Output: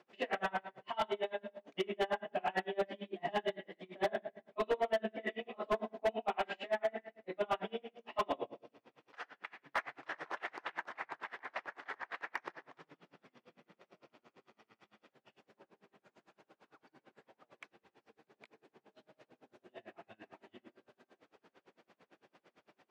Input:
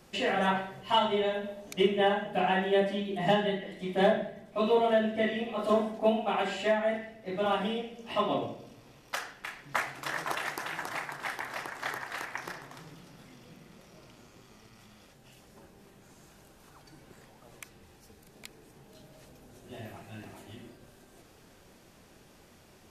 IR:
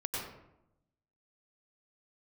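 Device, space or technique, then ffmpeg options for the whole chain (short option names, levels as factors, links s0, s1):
helicopter radio: -af "highpass=310,lowpass=2800,aeval=exprs='val(0)*pow(10,-32*(0.5-0.5*cos(2*PI*8.9*n/s))/20)':c=same,asoftclip=type=hard:threshold=0.0473"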